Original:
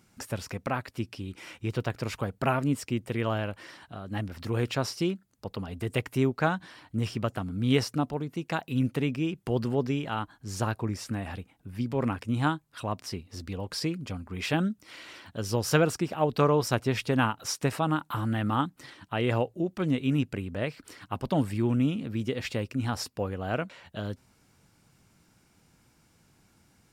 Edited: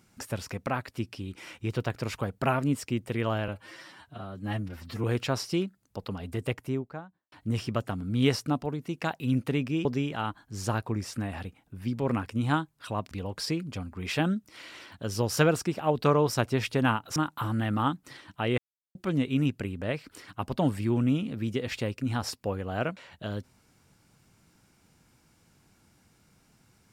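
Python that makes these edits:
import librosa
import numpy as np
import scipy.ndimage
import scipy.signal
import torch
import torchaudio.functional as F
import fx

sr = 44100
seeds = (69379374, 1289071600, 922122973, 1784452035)

y = fx.studio_fade_out(x, sr, start_s=5.68, length_s=1.12)
y = fx.edit(y, sr, fx.stretch_span(start_s=3.48, length_s=1.04, factor=1.5),
    fx.cut(start_s=9.33, length_s=0.45),
    fx.cut(start_s=13.04, length_s=0.41),
    fx.cut(start_s=17.5, length_s=0.39),
    fx.silence(start_s=19.31, length_s=0.37), tone=tone)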